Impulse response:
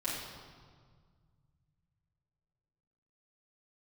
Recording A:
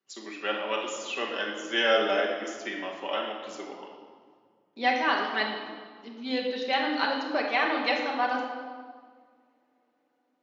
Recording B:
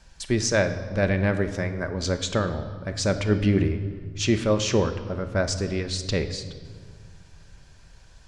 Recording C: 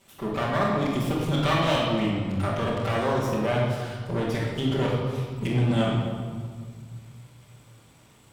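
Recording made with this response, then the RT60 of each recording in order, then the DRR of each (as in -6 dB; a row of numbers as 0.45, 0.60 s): C; 1.8 s, not exponential, 1.8 s; -1.5, 7.5, -9.5 dB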